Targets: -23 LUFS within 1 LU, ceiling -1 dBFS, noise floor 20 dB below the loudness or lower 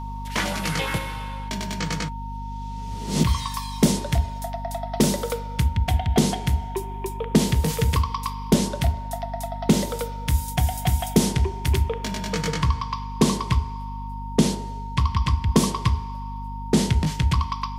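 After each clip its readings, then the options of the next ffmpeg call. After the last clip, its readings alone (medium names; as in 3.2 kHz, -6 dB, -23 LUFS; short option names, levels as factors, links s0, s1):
hum 50 Hz; highest harmonic 250 Hz; hum level -30 dBFS; steady tone 920 Hz; tone level -35 dBFS; loudness -24.5 LUFS; peak level -4.5 dBFS; loudness target -23.0 LUFS
-> -af "bandreject=f=50:t=h:w=6,bandreject=f=100:t=h:w=6,bandreject=f=150:t=h:w=6,bandreject=f=200:t=h:w=6,bandreject=f=250:t=h:w=6"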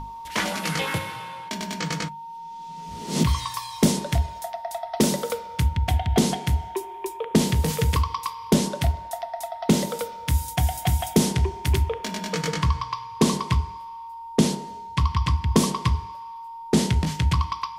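hum not found; steady tone 920 Hz; tone level -35 dBFS
-> -af "bandreject=f=920:w=30"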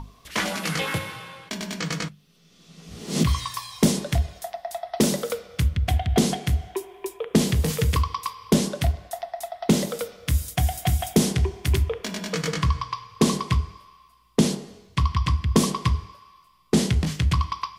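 steady tone not found; loudness -25.0 LUFS; peak level -5.0 dBFS; loudness target -23.0 LUFS
-> -af "volume=1.26"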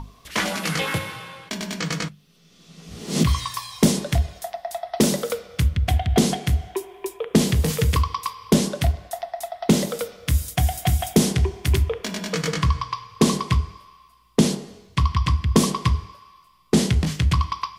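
loudness -23.0 LUFS; peak level -3.0 dBFS; noise floor -55 dBFS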